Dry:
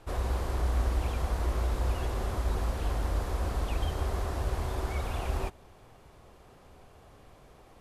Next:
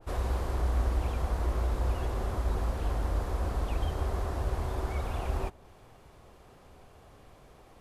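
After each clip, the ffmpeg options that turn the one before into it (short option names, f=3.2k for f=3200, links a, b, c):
-af "adynamicequalizer=threshold=0.00282:dfrequency=1700:dqfactor=0.7:tfrequency=1700:tqfactor=0.7:attack=5:release=100:ratio=0.375:range=2:mode=cutabove:tftype=highshelf"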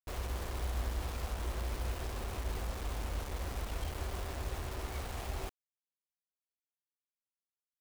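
-af "acrusher=bits=5:mix=0:aa=0.000001,volume=-8dB"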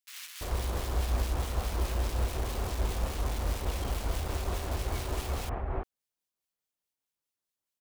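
-filter_complex "[0:a]tremolo=f=4.8:d=0.39,acrossover=split=1800[a][b];[a]adelay=340[c];[c][b]amix=inputs=2:normalize=0,volume=8dB"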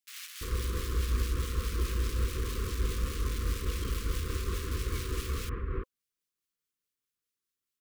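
-af "asuperstop=centerf=730:order=20:qfactor=1.4"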